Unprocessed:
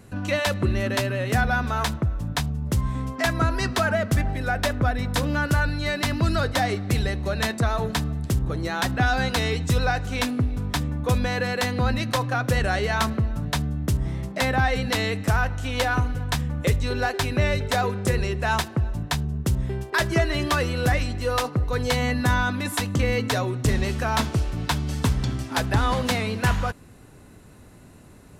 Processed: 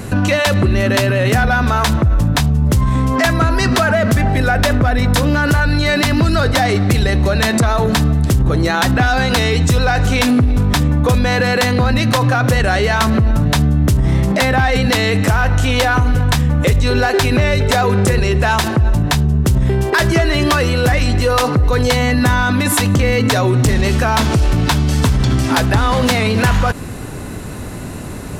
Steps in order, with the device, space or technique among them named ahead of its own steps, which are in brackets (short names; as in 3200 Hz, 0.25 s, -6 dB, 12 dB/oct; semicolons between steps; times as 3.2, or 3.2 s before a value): 3.63–4.38 HPF 66 Hz 12 dB/oct; loud club master (compressor 2:1, threshold -23 dBFS, peak gain reduction 4.5 dB; hard clip -18 dBFS, distortion -24 dB; maximiser +27.5 dB); gain -6 dB